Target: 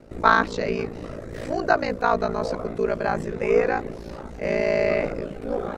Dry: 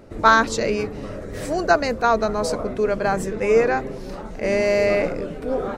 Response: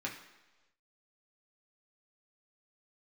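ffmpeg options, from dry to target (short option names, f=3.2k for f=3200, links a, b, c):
-filter_complex "[0:a]aeval=exprs='val(0)*sin(2*PI*28*n/s)':c=same,acrossover=split=4700[a][b];[b]acompressor=threshold=-54dB:ratio=4:attack=1:release=60[c];[a][c]amix=inputs=2:normalize=0"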